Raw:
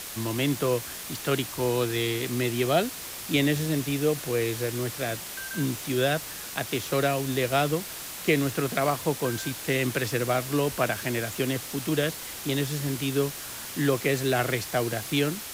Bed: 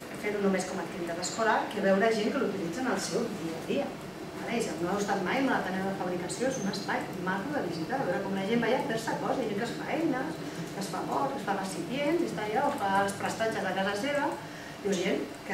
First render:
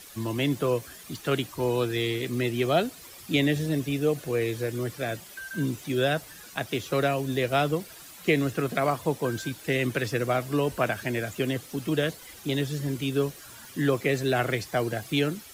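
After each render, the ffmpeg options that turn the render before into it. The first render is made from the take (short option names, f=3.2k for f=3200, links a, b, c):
-af "afftdn=nr=12:nf=-38"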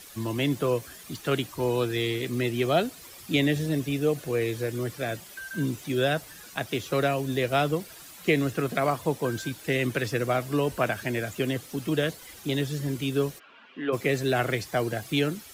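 -filter_complex "[0:a]asplit=3[a][b][c];[a]afade=t=out:st=13.38:d=0.02[d];[b]highpass=f=260:w=0.5412,highpass=f=260:w=1.3066,equalizer=f=330:t=q:w=4:g=-9,equalizer=f=590:t=q:w=4:g=-4,equalizer=f=850:t=q:w=4:g=-4,equalizer=f=1.8k:t=q:w=4:g=-7,equalizer=f=2.7k:t=q:w=4:g=5,lowpass=f=2.8k:w=0.5412,lowpass=f=2.8k:w=1.3066,afade=t=in:st=13.38:d=0.02,afade=t=out:st=13.92:d=0.02[e];[c]afade=t=in:st=13.92:d=0.02[f];[d][e][f]amix=inputs=3:normalize=0"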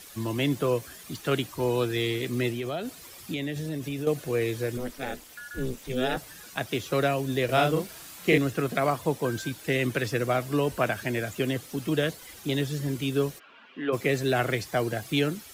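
-filter_complex "[0:a]asettb=1/sr,asplit=3[a][b][c];[a]atrim=end=2.514[d];[b]atrim=start=2.51:end=4.07,asetpts=PTS-STARTPTS,afade=t=in:d=0.004:c=qsin,afade=t=out:st=1.556:d=0.004:c=qsin,acompressor=threshold=-28dB:ratio=6:attack=3.2:release=140:knee=1:detection=peak[e];[c]atrim=start=4.066[f];[d][e]acrossfade=d=0.004:c1=hsin:c2=qsin[g];[g][f]acrossfade=d=0.004:c1=qsin:c2=hsin,asettb=1/sr,asplit=3[h][i][j];[h]atrim=end=4.774[k];[i]atrim=start=4.77:end=6.17,asetpts=PTS-STARTPTS,afade=t=in:d=0.004:c=qsin,afade=t=out:st=1.396:d=0.004:c=qsin,aeval=exprs='val(0)*sin(2*PI*130*n/s)':c=same[l];[j]atrim=start=6.166[m];[k][l]acrossfade=d=0.004:c1=hsin:c2=qsin[n];[n][m]acrossfade=d=0.004:c1=qsin:c2=hsin,asettb=1/sr,asplit=3[o][p][q];[o]atrim=end=7.454[r];[p]atrim=start=7.45:end=8.38,asetpts=PTS-STARTPTS,afade=t=in:d=0.004:c=qsin,afade=t=out:st=0.926:d=0.004:c=qsin,asplit=2[s][t];[t]adelay=39,volume=-3dB[u];[s][u]amix=inputs=2:normalize=0,atrim=end_sample=41013[v];[q]atrim=start=8.376[w];[r][v]acrossfade=d=0.004:c1=hsin:c2=qsin[x];[x][w]acrossfade=d=0.004:c1=qsin:c2=hsin"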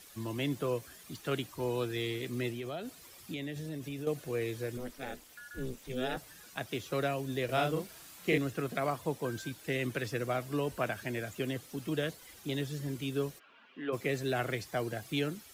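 -af "volume=-7.5dB"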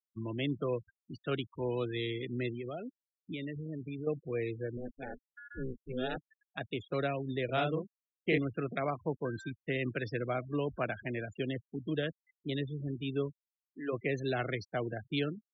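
-af "afftfilt=real='re*gte(hypot(re,im),0.0141)':imag='im*gte(hypot(re,im),0.0141)':win_size=1024:overlap=0.75,equalizer=f=910:w=1.5:g=-2.5"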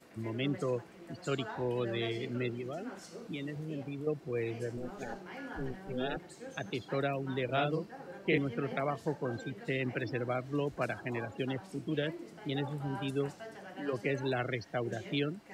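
-filter_complex "[1:a]volume=-17dB[a];[0:a][a]amix=inputs=2:normalize=0"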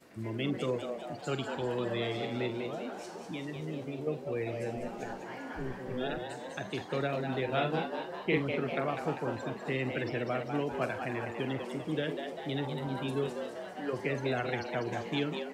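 -filter_complex "[0:a]asplit=2[a][b];[b]adelay=45,volume=-12.5dB[c];[a][c]amix=inputs=2:normalize=0,asplit=8[d][e][f][g][h][i][j][k];[e]adelay=198,afreqshift=110,volume=-6.5dB[l];[f]adelay=396,afreqshift=220,volume=-11.5dB[m];[g]adelay=594,afreqshift=330,volume=-16.6dB[n];[h]adelay=792,afreqshift=440,volume=-21.6dB[o];[i]adelay=990,afreqshift=550,volume=-26.6dB[p];[j]adelay=1188,afreqshift=660,volume=-31.7dB[q];[k]adelay=1386,afreqshift=770,volume=-36.7dB[r];[d][l][m][n][o][p][q][r]amix=inputs=8:normalize=0"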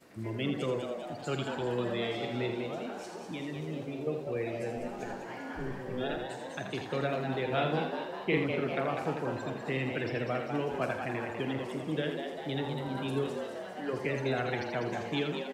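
-af "aecho=1:1:82:0.422"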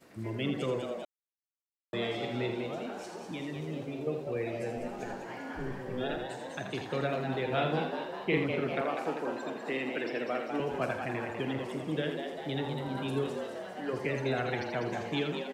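-filter_complex "[0:a]asettb=1/sr,asplit=3[a][b][c];[a]atrim=end=8.814[d];[b]atrim=start=8.81:end=10.6,asetpts=PTS-STARTPTS,afade=t=in:d=0.004:c=qsin,afade=t=out:st=1.786:d=0.004:c=qsin,highpass=f=210:w=0.5412,highpass=f=210:w=1.3066[e];[c]atrim=start=10.596[f];[d][e]acrossfade=d=0.004:c1=hsin:c2=qsin[g];[g][f]acrossfade=d=0.004:c1=qsin:c2=hsin,asplit=3[h][i][j];[h]atrim=end=1.05,asetpts=PTS-STARTPTS,afade=t=out:st=1.046:d=0.004:c=hsin[k];[i]atrim=start=1.05:end=1.93,asetpts=PTS-STARTPTS,volume=0[l];[j]atrim=start=1.93,asetpts=PTS-STARTPTS,afade=t=in:d=0.004:c=hsin[m];[k][l][m]concat=n=3:v=0:a=1"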